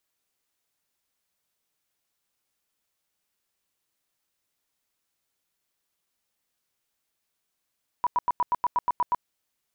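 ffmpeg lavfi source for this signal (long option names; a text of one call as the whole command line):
ffmpeg -f lavfi -i "aevalsrc='0.106*sin(2*PI*979*mod(t,0.12))*lt(mod(t,0.12),27/979)':duration=1.2:sample_rate=44100" out.wav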